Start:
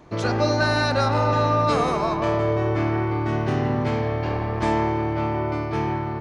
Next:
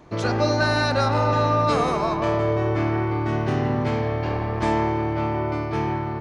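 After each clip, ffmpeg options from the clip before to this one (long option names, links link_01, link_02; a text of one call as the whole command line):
ffmpeg -i in.wav -af anull out.wav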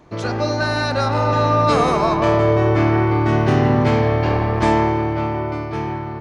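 ffmpeg -i in.wav -af "dynaudnorm=framelen=230:gausssize=13:maxgain=9dB" out.wav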